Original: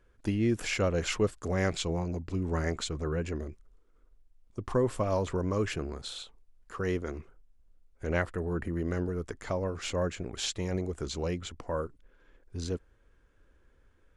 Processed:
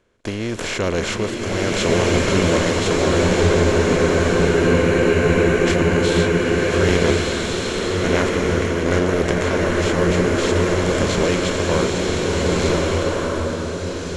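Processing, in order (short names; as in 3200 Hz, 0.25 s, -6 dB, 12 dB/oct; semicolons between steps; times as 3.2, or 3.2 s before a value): per-bin compression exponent 0.4; gate -32 dBFS, range -26 dB; random-step tremolo; spectral freeze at 3.2, 2.45 s; bloom reverb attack 1.56 s, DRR -4 dB; gain +6 dB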